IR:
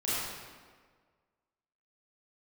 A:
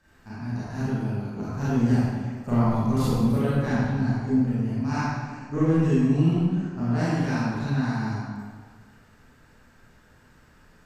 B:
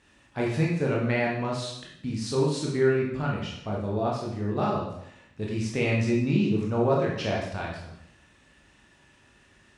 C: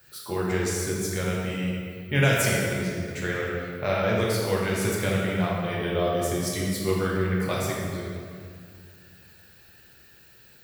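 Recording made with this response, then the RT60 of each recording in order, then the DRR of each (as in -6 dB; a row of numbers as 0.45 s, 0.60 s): A; 1.6 s, 0.75 s, 2.2 s; -11.0 dB, -3.5 dB, -5.0 dB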